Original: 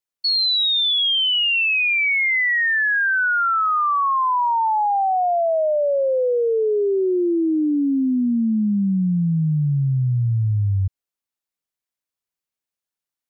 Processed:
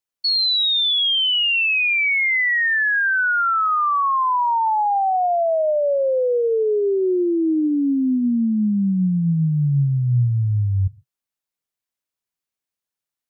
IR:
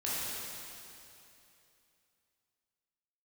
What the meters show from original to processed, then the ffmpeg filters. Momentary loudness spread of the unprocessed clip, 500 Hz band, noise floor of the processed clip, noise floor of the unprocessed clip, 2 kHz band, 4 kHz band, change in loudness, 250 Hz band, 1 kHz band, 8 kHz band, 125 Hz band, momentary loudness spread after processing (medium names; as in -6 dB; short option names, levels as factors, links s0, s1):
5 LU, +0.5 dB, under -85 dBFS, under -85 dBFS, 0.0 dB, 0.0 dB, +0.5 dB, +0.5 dB, +0.5 dB, no reading, +1.0 dB, 4 LU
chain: -filter_complex "[0:a]asplit=2[s0][s1];[s1]equalizer=f=130:w=1.5:g=14[s2];[1:a]atrim=start_sample=2205,atrim=end_sample=6615[s3];[s2][s3]afir=irnorm=-1:irlink=0,volume=0.0398[s4];[s0][s4]amix=inputs=2:normalize=0"